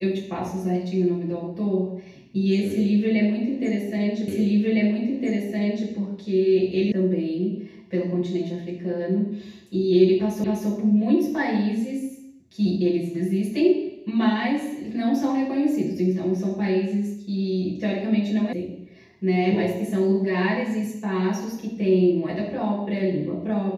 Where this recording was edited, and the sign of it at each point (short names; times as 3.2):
4.28 repeat of the last 1.61 s
6.92 sound cut off
10.44 repeat of the last 0.25 s
18.53 sound cut off